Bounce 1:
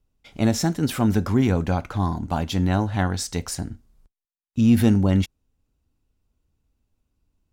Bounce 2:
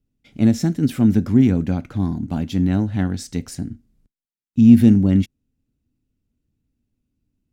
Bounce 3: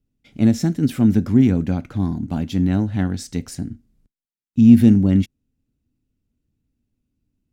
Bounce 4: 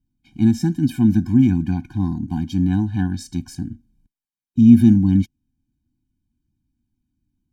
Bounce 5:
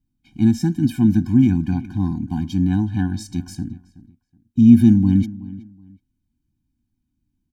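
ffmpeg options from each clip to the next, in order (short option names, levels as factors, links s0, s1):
-af "aeval=exprs='0.596*(cos(1*acos(clip(val(0)/0.596,-1,1)))-cos(1*PI/2))+0.0119*(cos(7*acos(clip(val(0)/0.596,-1,1)))-cos(7*PI/2))':c=same,equalizer=f=125:t=o:w=1:g=7,equalizer=f=250:t=o:w=1:g=11,equalizer=f=1000:t=o:w=1:g=-7,equalizer=f=2000:t=o:w=1:g=3,volume=0.596"
-af anull
-af "afftfilt=real='re*eq(mod(floor(b*sr/1024/360),2),0)':imag='im*eq(mod(floor(b*sr/1024/360),2),0)':win_size=1024:overlap=0.75"
-filter_complex "[0:a]asplit=2[s0][s1];[s1]adelay=373,lowpass=f=2700:p=1,volume=0.126,asplit=2[s2][s3];[s3]adelay=373,lowpass=f=2700:p=1,volume=0.25[s4];[s0][s2][s4]amix=inputs=3:normalize=0"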